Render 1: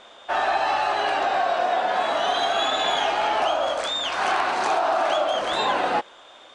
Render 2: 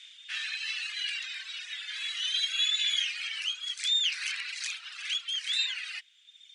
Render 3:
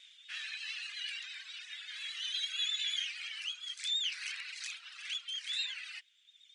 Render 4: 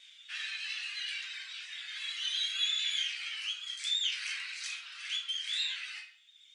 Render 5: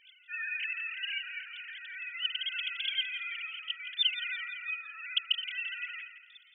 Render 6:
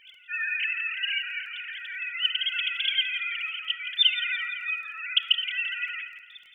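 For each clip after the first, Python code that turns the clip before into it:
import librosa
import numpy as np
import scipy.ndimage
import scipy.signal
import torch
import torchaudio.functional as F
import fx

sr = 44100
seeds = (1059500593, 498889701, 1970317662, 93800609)

y1 = scipy.signal.sosfilt(scipy.signal.butter(6, 2100.0, 'highpass', fs=sr, output='sos'), x)
y1 = fx.dereverb_blind(y1, sr, rt60_s=1.6)
y1 = F.gain(torch.from_numpy(y1), 2.0).numpy()
y2 = fx.vibrato(y1, sr, rate_hz=8.6, depth_cents=41.0)
y2 = F.gain(torch.from_numpy(y2), -7.0).numpy()
y3 = fx.room_shoebox(y2, sr, seeds[0], volume_m3=78.0, walls='mixed', distance_m=0.88)
y4 = fx.sine_speech(y3, sr)
y4 = fx.echo_feedback(y4, sr, ms=169, feedback_pct=49, wet_db=-12.5)
y5 = fx.dmg_crackle(y4, sr, seeds[1], per_s=16.0, level_db=-53.0)
y5 = fx.room_shoebox(y5, sr, seeds[2], volume_m3=2400.0, walls='furnished', distance_m=0.62)
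y5 = F.gain(torch.from_numpy(y5), 7.0).numpy()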